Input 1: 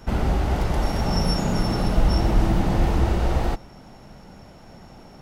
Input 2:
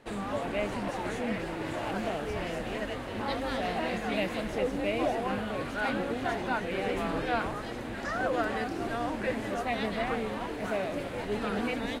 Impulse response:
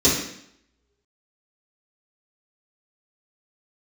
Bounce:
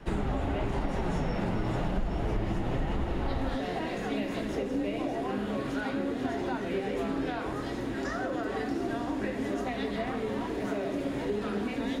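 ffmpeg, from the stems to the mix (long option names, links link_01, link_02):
-filter_complex "[0:a]lowpass=frequency=3400:width=0.5412,lowpass=frequency=3400:width=1.3066,flanger=delay=4.8:depth=5.3:regen=43:speed=1:shape=triangular,volume=0dB[link_01];[1:a]acompressor=threshold=-31dB:ratio=6,volume=-1.5dB,asplit=2[link_02][link_03];[link_03]volume=-20.5dB[link_04];[2:a]atrim=start_sample=2205[link_05];[link_04][link_05]afir=irnorm=-1:irlink=0[link_06];[link_01][link_02][link_06]amix=inputs=3:normalize=0,acompressor=threshold=-26dB:ratio=6"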